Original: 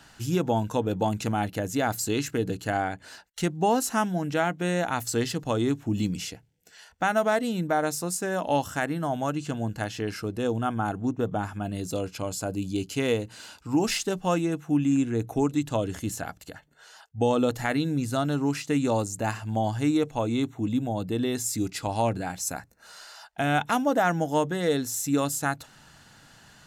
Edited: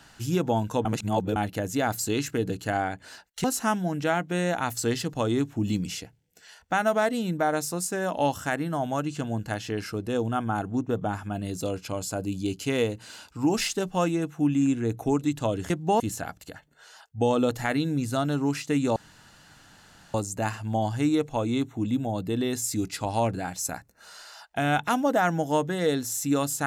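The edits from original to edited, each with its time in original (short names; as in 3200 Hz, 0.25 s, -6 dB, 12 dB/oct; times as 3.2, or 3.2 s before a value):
0.85–1.36 reverse
3.44–3.74 move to 16
18.96 insert room tone 1.18 s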